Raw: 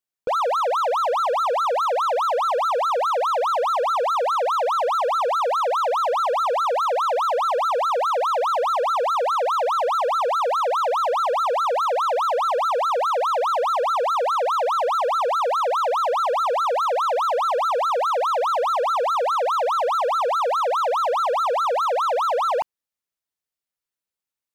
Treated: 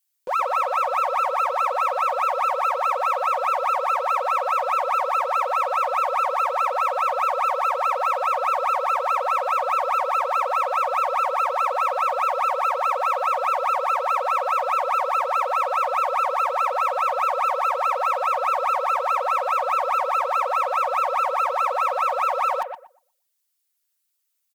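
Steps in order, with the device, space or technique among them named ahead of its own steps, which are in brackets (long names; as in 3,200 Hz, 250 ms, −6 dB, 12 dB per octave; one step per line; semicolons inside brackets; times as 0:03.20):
rockabilly slapback (tube saturation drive 21 dB, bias 0.3; tape delay 119 ms, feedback 24%, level −5 dB, low-pass 1,400 Hz)
spectral tilt +4 dB per octave
comb filter 5.4 ms, depth 76%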